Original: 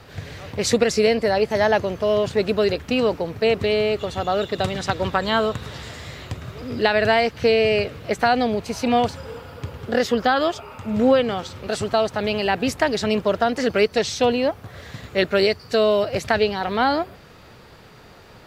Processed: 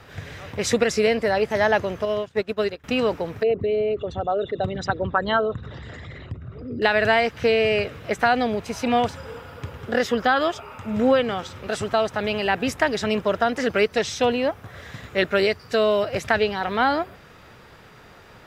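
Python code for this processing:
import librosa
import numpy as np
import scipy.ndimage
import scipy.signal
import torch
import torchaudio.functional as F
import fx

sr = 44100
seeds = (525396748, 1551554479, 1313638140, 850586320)

y = fx.upward_expand(x, sr, threshold_db=-30.0, expansion=2.5, at=(2.05, 2.84))
y = fx.envelope_sharpen(y, sr, power=2.0, at=(3.43, 6.82))
y = fx.peak_eq(y, sr, hz=1600.0, db=4.0, octaves=1.4)
y = fx.notch(y, sr, hz=4400.0, q=10.0)
y = y * 10.0 ** (-2.5 / 20.0)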